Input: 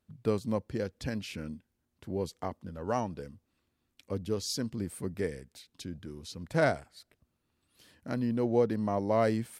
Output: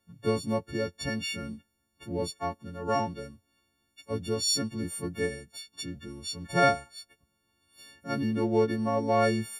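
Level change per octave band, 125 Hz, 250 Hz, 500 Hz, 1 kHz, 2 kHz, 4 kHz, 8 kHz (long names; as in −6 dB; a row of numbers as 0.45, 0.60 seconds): +1.0, +1.5, +2.0, +6.0, +5.0, +9.5, +8.0 decibels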